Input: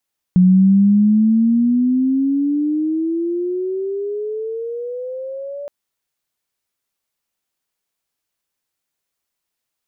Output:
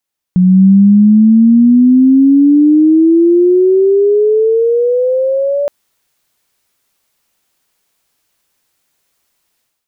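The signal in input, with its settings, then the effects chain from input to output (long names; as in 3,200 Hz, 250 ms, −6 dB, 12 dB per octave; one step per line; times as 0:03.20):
glide logarithmic 180 Hz → 580 Hz −7 dBFS → −26 dBFS 5.32 s
automatic gain control gain up to 15 dB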